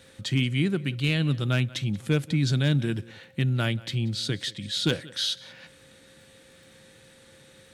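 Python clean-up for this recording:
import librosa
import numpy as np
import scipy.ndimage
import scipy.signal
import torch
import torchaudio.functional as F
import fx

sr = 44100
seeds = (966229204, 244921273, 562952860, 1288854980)

y = fx.fix_declip(x, sr, threshold_db=-13.5)
y = fx.fix_declick_ar(y, sr, threshold=6.5)
y = fx.notch(y, sr, hz=530.0, q=30.0)
y = fx.fix_echo_inverse(y, sr, delay_ms=182, level_db=-21.5)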